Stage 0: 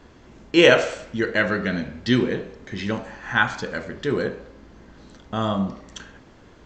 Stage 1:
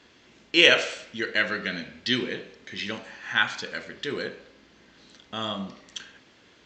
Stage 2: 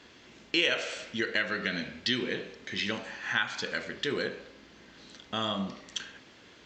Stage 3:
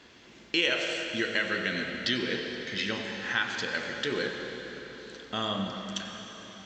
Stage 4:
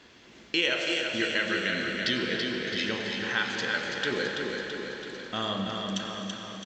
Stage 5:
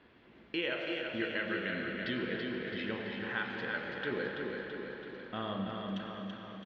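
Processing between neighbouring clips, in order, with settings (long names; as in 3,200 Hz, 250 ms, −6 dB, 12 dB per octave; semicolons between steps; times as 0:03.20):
meter weighting curve D; level −8 dB
downward compressor 3 to 1, threshold −29 dBFS, peak gain reduction 13.5 dB; level +2 dB
dense smooth reverb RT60 4.3 s, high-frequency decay 0.85×, pre-delay 80 ms, DRR 4 dB
repeating echo 332 ms, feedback 59%, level −5 dB
high-frequency loss of the air 440 metres; level −4 dB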